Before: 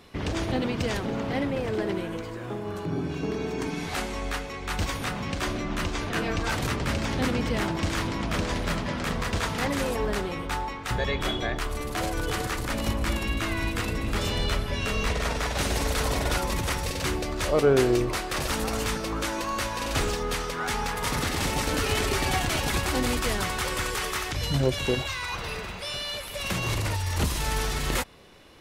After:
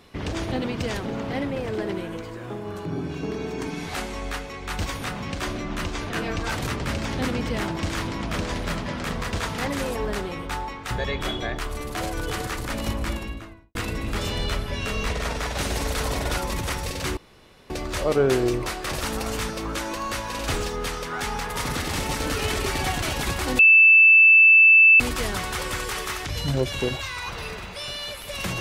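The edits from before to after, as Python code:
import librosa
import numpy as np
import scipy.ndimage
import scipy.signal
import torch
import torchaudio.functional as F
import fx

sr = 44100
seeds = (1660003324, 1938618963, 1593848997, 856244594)

y = fx.studio_fade_out(x, sr, start_s=12.95, length_s=0.8)
y = fx.edit(y, sr, fx.insert_room_tone(at_s=17.17, length_s=0.53),
    fx.insert_tone(at_s=23.06, length_s=1.41, hz=2640.0, db=-9.5), tone=tone)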